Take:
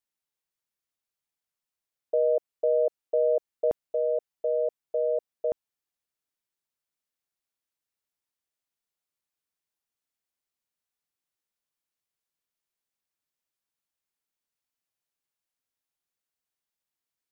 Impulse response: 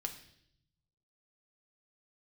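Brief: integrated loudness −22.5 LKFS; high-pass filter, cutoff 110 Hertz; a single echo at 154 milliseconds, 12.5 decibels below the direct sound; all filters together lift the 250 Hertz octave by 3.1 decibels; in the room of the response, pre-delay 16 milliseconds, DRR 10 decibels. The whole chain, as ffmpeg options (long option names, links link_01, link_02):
-filter_complex "[0:a]highpass=110,equalizer=frequency=250:width_type=o:gain=5,aecho=1:1:154:0.237,asplit=2[link_01][link_02];[1:a]atrim=start_sample=2205,adelay=16[link_03];[link_02][link_03]afir=irnorm=-1:irlink=0,volume=-9dB[link_04];[link_01][link_04]amix=inputs=2:normalize=0,volume=3.5dB"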